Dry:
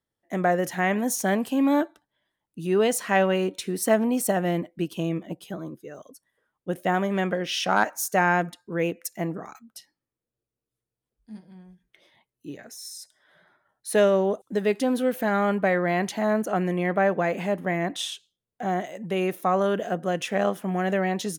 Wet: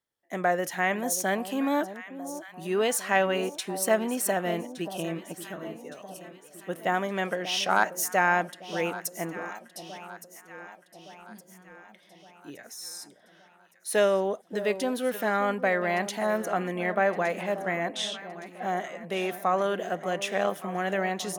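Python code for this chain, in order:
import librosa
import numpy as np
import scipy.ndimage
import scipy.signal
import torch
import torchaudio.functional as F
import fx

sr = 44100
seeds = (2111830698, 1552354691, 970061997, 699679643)

y = fx.env_lowpass(x, sr, base_hz=1500.0, full_db=-23.0, at=(17.41, 18.98))
y = fx.low_shelf(y, sr, hz=360.0, db=-10.5)
y = fx.echo_alternate(y, sr, ms=583, hz=960.0, feedback_pct=71, wet_db=-12.0)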